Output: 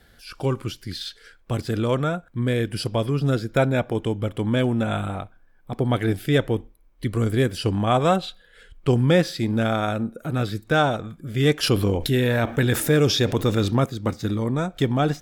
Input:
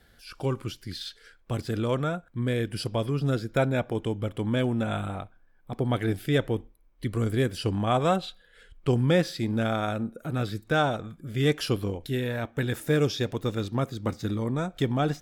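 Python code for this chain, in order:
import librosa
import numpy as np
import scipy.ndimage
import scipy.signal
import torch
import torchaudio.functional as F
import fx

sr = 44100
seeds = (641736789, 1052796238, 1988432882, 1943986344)

y = fx.env_flatten(x, sr, amount_pct=50, at=(11.63, 13.86))
y = F.gain(torch.from_numpy(y), 4.5).numpy()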